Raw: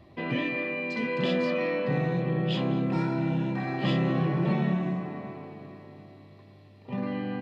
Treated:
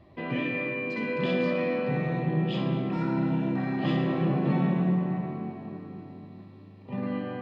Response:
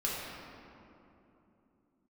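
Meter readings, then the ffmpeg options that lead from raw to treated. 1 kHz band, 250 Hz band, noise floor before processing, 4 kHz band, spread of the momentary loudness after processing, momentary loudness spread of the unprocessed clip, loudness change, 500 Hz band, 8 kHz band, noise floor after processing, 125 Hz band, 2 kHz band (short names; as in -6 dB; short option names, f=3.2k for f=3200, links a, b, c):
0.0 dB, +1.0 dB, -53 dBFS, -3.5 dB, 15 LU, 13 LU, 0.0 dB, 0.0 dB, n/a, -49 dBFS, 0.0 dB, -1.0 dB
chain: -filter_complex "[0:a]highshelf=f=4.6k:g=-9.5,asplit=2[a][b];[1:a]atrim=start_sample=2205,adelay=56[c];[b][c]afir=irnorm=-1:irlink=0,volume=-9.5dB[d];[a][d]amix=inputs=2:normalize=0,volume=-1.5dB"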